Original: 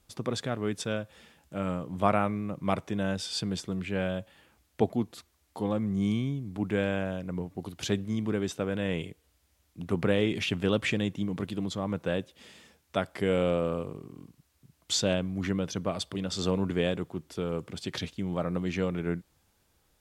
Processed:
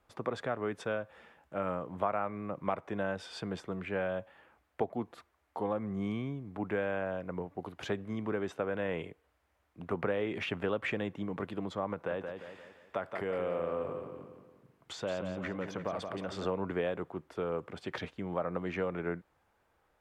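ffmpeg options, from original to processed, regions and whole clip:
ffmpeg -i in.wav -filter_complex "[0:a]asettb=1/sr,asplit=3[link_01][link_02][link_03];[link_01]atrim=end=11.934[link_04];[link_02]atrim=start=11.93:end=16.45,asetpts=PTS-STARTPTS,afade=type=in:duration=0.004:curve=qsin,afade=type=out:start_time=4.516:duration=0.004:curve=qsin,acompressor=threshold=-29dB:ratio=4:attack=3.2:release=140:knee=1:detection=peak,aecho=1:1:174|348|522|696|870:0.447|0.197|0.0865|0.0381|0.0167,atrim=end_sample=199332[link_05];[link_03]atrim=start=16.446[link_06];[link_04][link_05]acrossfade=duration=0.004:curve1=hsin:curve2=qsin[link_07];[link_07][link_06]acrossfade=duration=0.004:curve1=qsin:curve2=hsin,acrossover=split=430 2100:gain=0.251 1 0.1[link_08][link_09][link_10];[link_08][link_09][link_10]amix=inputs=3:normalize=0,acompressor=threshold=-33dB:ratio=4,volume=4dB" out.wav

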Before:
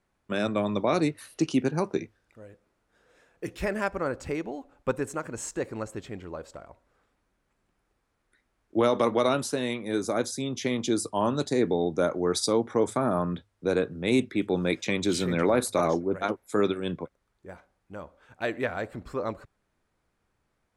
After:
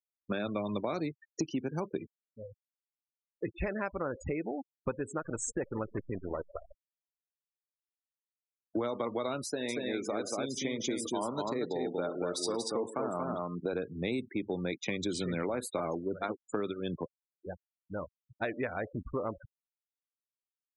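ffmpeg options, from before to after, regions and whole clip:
ffmpeg -i in.wav -filter_complex "[0:a]asettb=1/sr,asplit=3[link_01][link_02][link_03];[link_01]atrim=end=5.174[link_04];[link_02]atrim=start=5.17:end=8.78,asetpts=PTS-STARTPTS,afade=type=in:duration=0.004:curve=qsin,afade=type=out:start_time=3.606:duration=0.004:curve=qsin,acrusher=bits=7:dc=4:mix=0:aa=0.000001,aecho=1:1:158:0.133,atrim=end_sample=159201[link_05];[link_03]atrim=start=8.776[link_06];[link_04][link_05]acrossfade=duration=0.004:curve1=hsin:curve2=qsin[link_07];[link_07][link_06]acrossfade=duration=0.004:curve1=qsin:curve2=hsin,asettb=1/sr,asplit=3[link_08][link_09][link_10];[link_08]atrim=end=9.454[link_11];[link_09]atrim=start=9.45:end=13.73,asetpts=PTS-STARTPTS,afade=type=in:duration=0.004:curve=qsin,afade=type=out:start_time=4.276:duration=0.004:curve=qsin,deesser=0.3,highpass=frequency=240:poles=1,aecho=1:1:66|108|235:0.141|0.158|0.708,atrim=end_sample=188748[link_12];[link_10]atrim=start=13.726[link_13];[link_11][link_12]acrossfade=duration=0.004:curve1=hsin:curve2=qsin[link_14];[link_14][link_13]acrossfade=duration=0.004:curve1=qsin:curve2=hsin,afftfilt=real='re*gte(hypot(re,im),0.02)':imag='im*gte(hypot(re,im),0.02)':win_size=1024:overlap=0.75,acompressor=threshold=-34dB:ratio=6,volume=3dB" out.wav

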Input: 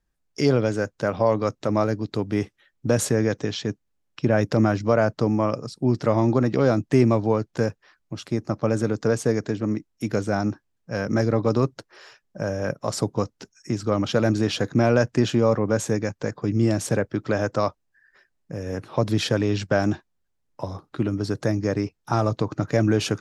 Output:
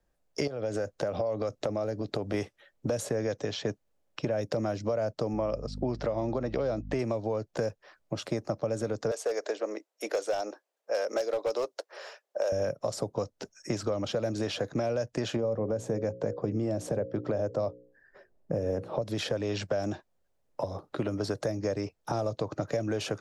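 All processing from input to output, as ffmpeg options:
ffmpeg -i in.wav -filter_complex "[0:a]asettb=1/sr,asplit=3[link_01][link_02][link_03];[link_01]atrim=end=0.474[link_04];[link_02]atrim=start=0.47:end=2.34,asetpts=PTS-STARTPTS,afade=type=in:duration=0.004:curve=qsin,afade=type=out:start_time=1.866:duration=0.004:curve=qsin,acompressor=threshold=-26dB:ratio=12:attack=3.2:release=140:knee=1:detection=peak,bandreject=frequency=950:width=12[link_05];[link_03]atrim=start=2.336[link_06];[link_04][link_05]acrossfade=duration=0.004:curve1=hsin:curve2=qsin[link_07];[link_07][link_06]acrossfade=duration=0.004:curve1=qsin:curve2=hsin,asettb=1/sr,asplit=3[link_08][link_09][link_10];[link_08]atrim=end=5.334[link_11];[link_09]atrim=start=5.33:end=6.99,asetpts=PTS-STARTPTS,afade=type=in:duration=0.004:curve=qsin,afade=type=out:start_time=1.656:duration=0.004:curve=qsin,lowpass=4800,aeval=exprs='val(0)+0.0282*(sin(2*PI*50*n/s)+sin(2*PI*2*50*n/s)/2+sin(2*PI*3*50*n/s)/3+sin(2*PI*4*50*n/s)/4+sin(2*PI*5*50*n/s)/5)':channel_layout=same[link_12];[link_10]atrim=start=6.986[link_13];[link_11][link_12]acrossfade=duration=0.004:curve1=hsin:curve2=qsin[link_14];[link_14][link_13]acrossfade=duration=0.004:curve1=qsin:curve2=hsin,asettb=1/sr,asplit=3[link_15][link_16][link_17];[link_15]atrim=end=9.114[link_18];[link_16]atrim=start=9.11:end=12.52,asetpts=PTS-STARTPTS,afade=type=in:duration=0.004:curve=qsin,afade=type=out:start_time=3.406:duration=0.004:curve=qsin,highpass=frequency=430:width=0.5412,highpass=frequency=430:width=1.3066,asoftclip=type=hard:threshold=-21dB[link_19];[link_17]atrim=start=12.516[link_20];[link_18][link_19]acrossfade=duration=0.004:curve1=hsin:curve2=qsin[link_21];[link_21][link_20]acrossfade=duration=0.004:curve1=qsin:curve2=hsin,asettb=1/sr,asplit=3[link_22][link_23][link_24];[link_22]atrim=end=15.364[link_25];[link_23]atrim=start=15.36:end=19.02,asetpts=PTS-STARTPTS,afade=type=in:duration=0.004:curve=qsin,afade=type=out:start_time=3.656:duration=0.004:curve=qsin,tiltshelf=frequency=970:gain=7.5,bandreject=frequency=60:width_type=h:width=6,bandreject=frequency=120:width_type=h:width=6,bandreject=frequency=180:width_type=h:width=6,bandreject=frequency=240:width_type=h:width=6,bandreject=frequency=300:width_type=h:width=6,bandreject=frequency=360:width_type=h:width=6,bandreject=frequency=420:width_type=h:width=6,bandreject=frequency=480:width_type=h:width=6,bandreject=frequency=540:width_type=h:width=6[link_26];[link_24]atrim=start=19.016[link_27];[link_25][link_26]acrossfade=duration=0.004:curve1=hsin:curve2=qsin[link_28];[link_28][link_27]acrossfade=duration=0.004:curve1=qsin:curve2=hsin,equalizer=frequency=580:width_type=o:width=0.97:gain=12,alimiter=limit=-11dB:level=0:latency=1:release=367,acrossover=split=120|620|2800[link_29][link_30][link_31][link_32];[link_29]acompressor=threshold=-41dB:ratio=4[link_33];[link_30]acompressor=threshold=-32dB:ratio=4[link_34];[link_31]acompressor=threshold=-37dB:ratio=4[link_35];[link_32]acompressor=threshold=-38dB:ratio=4[link_36];[link_33][link_34][link_35][link_36]amix=inputs=4:normalize=0" out.wav

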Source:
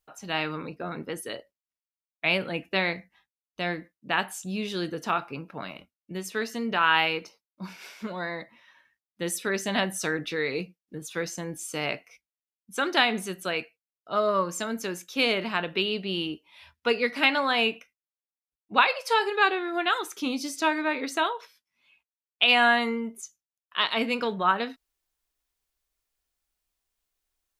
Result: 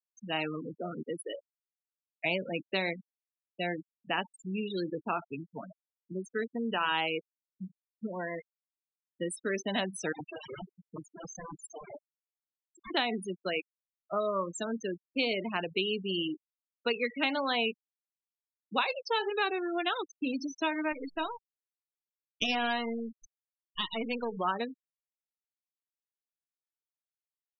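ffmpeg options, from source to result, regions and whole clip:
ffmpeg -i in.wav -filter_complex "[0:a]asettb=1/sr,asplit=3[link_01][link_02][link_03];[link_01]atrim=end=10.124[link_04];[link_02]atrim=start=10.12:end=12.91,asetpts=PTS-STARTPTS,afade=type=in:duration=0.004:curve=qsin,afade=type=out:start_time=2.786:duration=0.004:curve=qsin,equalizer=frequency=870:width_type=o:width=0.3:gain=13.5,aeval=exprs='(mod(26.6*val(0)+1,2)-1)/26.6':channel_layout=same,aecho=1:1:163|326|489|652:0.376|0.128|0.0434|0.0148,atrim=end_sample=123039[link_05];[link_03]atrim=start=12.906[link_06];[link_04][link_05]acrossfade=duration=0.004:curve1=hsin:curve2=qsin[link_07];[link_07][link_06]acrossfade=duration=0.004:curve1=qsin:curve2=hsin,asettb=1/sr,asplit=3[link_08][link_09][link_10];[link_08]atrim=end=20.924[link_11];[link_09]atrim=start=20.92:end=24.37,asetpts=PTS-STARTPTS,afade=type=in:duration=0.004:curve=qsin,afade=type=out:start_time=3.446:duration=0.004:curve=qsin,aeval=exprs='if(lt(val(0),0),0.251*val(0),val(0))':channel_layout=same,aecho=1:1:75:0.0944,atrim=end_sample=152145[link_12];[link_10]atrim=start=24.366[link_13];[link_11][link_12]acrossfade=duration=0.004:curve1=hsin:curve2=qsin[link_14];[link_14][link_13]acrossfade=duration=0.004:curve1=qsin:curve2=hsin,afftfilt=real='re*gte(hypot(re,im),0.0562)':imag='im*gte(hypot(re,im),0.0562)':win_size=1024:overlap=0.75,equalizer=frequency=1400:width_type=o:width=1.2:gain=-6.5,acrossover=split=170|1200|3800[link_15][link_16][link_17][link_18];[link_15]acompressor=threshold=-54dB:ratio=4[link_19];[link_16]acompressor=threshold=-30dB:ratio=4[link_20];[link_17]acompressor=threshold=-32dB:ratio=4[link_21];[link_18]acompressor=threshold=-40dB:ratio=4[link_22];[link_19][link_20][link_21][link_22]amix=inputs=4:normalize=0" out.wav

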